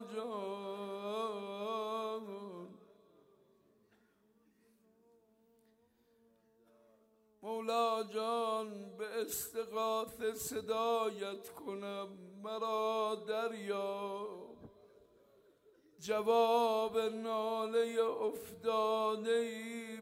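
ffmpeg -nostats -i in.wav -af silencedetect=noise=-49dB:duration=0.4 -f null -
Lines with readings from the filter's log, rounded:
silence_start: 2.76
silence_end: 7.43 | silence_duration: 4.67
silence_start: 14.67
silence_end: 16.01 | silence_duration: 1.35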